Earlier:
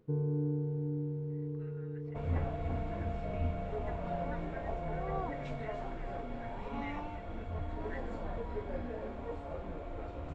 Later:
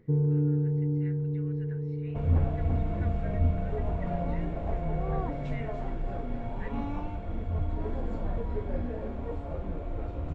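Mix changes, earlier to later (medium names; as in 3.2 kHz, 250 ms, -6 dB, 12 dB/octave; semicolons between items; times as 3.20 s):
speech: entry -1.30 s; master: add bass shelf 340 Hz +10 dB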